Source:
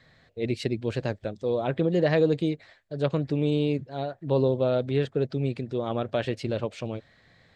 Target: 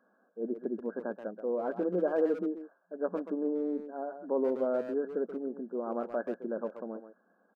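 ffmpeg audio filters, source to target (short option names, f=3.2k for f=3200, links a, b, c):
-filter_complex "[0:a]afftfilt=real='re*between(b*sr/4096,180,1700)':imag='im*between(b*sr/4096,180,1700)':win_size=4096:overlap=0.75,asplit=2[a][b];[b]adelay=130,highpass=300,lowpass=3.4k,asoftclip=type=hard:threshold=-22.5dB,volume=-9dB[c];[a][c]amix=inputs=2:normalize=0,volume=-5.5dB"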